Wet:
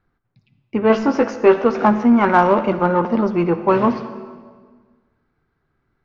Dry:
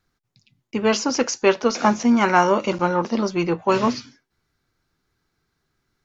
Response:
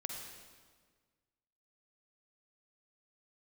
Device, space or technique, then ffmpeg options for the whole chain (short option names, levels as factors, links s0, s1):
saturated reverb return: -filter_complex "[0:a]lowpass=1700,asettb=1/sr,asplit=3[s0][s1][s2];[s0]atrim=end=0.884[s3];[s1]atrim=start=0.88:end=1.64,asetpts=PTS-STARTPTS,afade=t=in:d=0.004:c=qsin,afade=t=out:st=0.756:d=0.004:c=qsin,asplit=2[s4][s5];[s5]adelay=18,volume=0.562[s6];[s4][s6]amix=inputs=2:normalize=0,atrim=end_sample=33516[s7];[s2]atrim=start=1.636[s8];[s3][s7]acrossfade=d=0.004:c1=hsin:c2=qsin[s9];[s9][s8]acrossfade=d=0.004:c1=qsin:c2=hsin,asplit=2[s10][s11];[1:a]atrim=start_sample=2205[s12];[s11][s12]afir=irnorm=-1:irlink=0,asoftclip=type=tanh:threshold=0.141,volume=0.708[s13];[s10][s13]amix=inputs=2:normalize=0,volume=1.12"